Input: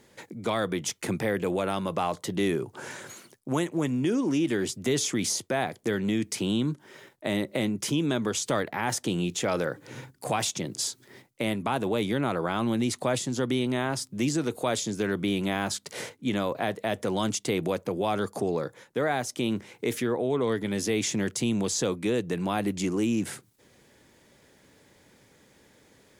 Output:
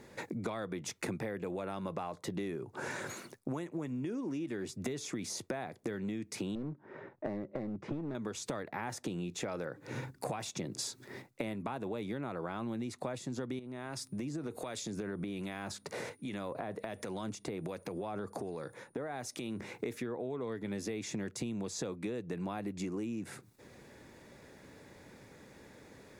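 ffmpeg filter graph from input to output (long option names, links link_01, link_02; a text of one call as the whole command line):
ffmpeg -i in.wav -filter_complex "[0:a]asettb=1/sr,asplit=3[link_01][link_02][link_03];[link_01]atrim=end=6.554[link_04];[link_02]atrim=start=6.55:end=8.15,asetpts=PTS-STARTPTS,afade=type=in:duration=0.004:curve=qsin,afade=type=out:start_time=1.596:duration=0.004:curve=qsin,lowpass=1400,aeval=exprs='clip(val(0),-1,0.0355)':channel_layout=same[link_05];[link_03]atrim=start=8.146[link_06];[link_04][link_05]acrossfade=duration=0.004:curve1=hsin:curve2=qsin[link_07];[link_07][link_06]acrossfade=duration=0.004:curve1=qsin:curve2=hsin,asettb=1/sr,asplit=3[link_08][link_09][link_10];[link_08]atrim=end=13.594[link_11];[link_09]atrim=start=13.59:end=19.6,asetpts=PTS-STARTPTS,afade=type=in:duration=0.004:curve=qsin,afade=type=out:start_time=6.006:duration=0.004:curve=qsin,acompressor=threshold=-36dB:ratio=4:attack=3.2:release=140:knee=1:detection=peak,aeval=exprs='val(0)+0.000631*sin(2*PI*9600*n/s)':channel_layout=same,acrossover=split=1600[link_12][link_13];[link_12]aeval=exprs='val(0)*(1-0.5/2+0.5/2*cos(2*PI*1.3*n/s))':channel_layout=same[link_14];[link_13]aeval=exprs='val(0)*(1-0.5/2-0.5/2*cos(2*PI*1.3*n/s))':channel_layout=same[link_15];[link_14][link_15]amix=inputs=2:normalize=0[link_16];[link_10]atrim=start=19.596[link_17];[link_11][link_16]acrossfade=duration=0.004:curve1=hsin:curve2=qsin[link_18];[link_18][link_17]acrossfade=duration=0.004:curve1=qsin:curve2=hsin,highshelf=frequency=3500:gain=-8,bandreject=frequency=3100:width=8.2,acompressor=threshold=-39dB:ratio=16,volume=4.5dB" out.wav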